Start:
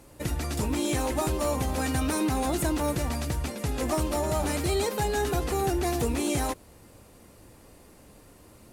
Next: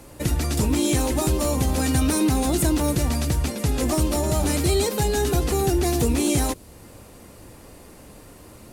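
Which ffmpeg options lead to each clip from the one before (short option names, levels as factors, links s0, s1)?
-filter_complex "[0:a]acrossover=split=420|3000[s0][s1][s2];[s1]acompressor=threshold=0.00355:ratio=1.5[s3];[s0][s3][s2]amix=inputs=3:normalize=0,volume=2.37"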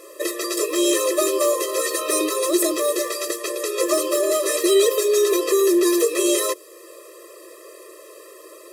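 -af "afftfilt=real='re*eq(mod(floor(b*sr/1024/340),2),1)':imag='im*eq(mod(floor(b*sr/1024/340),2),1)':win_size=1024:overlap=0.75,volume=2.37"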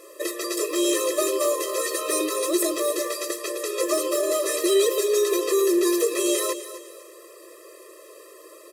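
-af "aecho=1:1:252|504|756:0.224|0.0739|0.0244,volume=0.668"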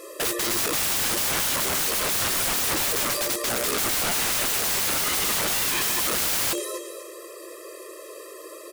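-af "aeval=exprs='(mod(17.8*val(0)+1,2)-1)/17.8':c=same,volume=1.88"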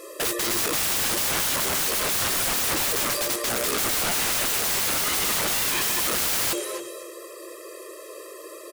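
-filter_complex "[0:a]asplit=2[s0][s1];[s1]adelay=270,highpass=300,lowpass=3400,asoftclip=type=hard:threshold=0.0422,volume=0.282[s2];[s0][s2]amix=inputs=2:normalize=0"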